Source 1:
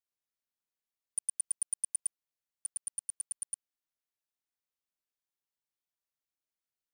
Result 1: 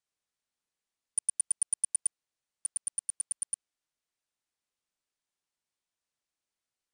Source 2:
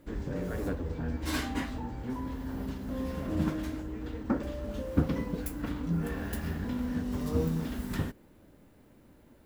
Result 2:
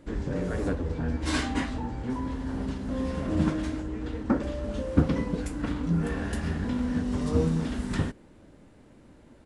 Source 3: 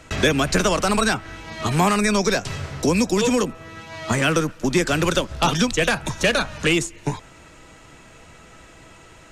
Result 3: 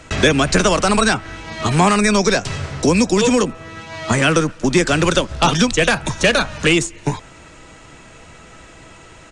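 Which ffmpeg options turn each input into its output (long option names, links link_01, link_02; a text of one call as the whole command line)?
ffmpeg -i in.wav -af "aresample=22050,aresample=44100,volume=4.5dB" out.wav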